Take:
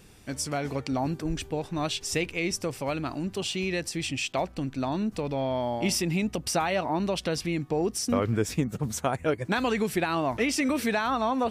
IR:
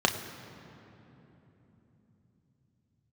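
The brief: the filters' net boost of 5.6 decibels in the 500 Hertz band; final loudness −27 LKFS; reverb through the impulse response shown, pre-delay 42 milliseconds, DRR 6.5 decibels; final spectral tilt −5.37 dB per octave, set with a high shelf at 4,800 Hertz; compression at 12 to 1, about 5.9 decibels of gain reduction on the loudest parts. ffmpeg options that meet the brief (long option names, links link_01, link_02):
-filter_complex "[0:a]equalizer=frequency=500:width_type=o:gain=7,highshelf=frequency=4800:gain=-6,acompressor=threshold=-23dB:ratio=12,asplit=2[link_01][link_02];[1:a]atrim=start_sample=2205,adelay=42[link_03];[link_02][link_03]afir=irnorm=-1:irlink=0,volume=-19.5dB[link_04];[link_01][link_04]amix=inputs=2:normalize=0,volume=1dB"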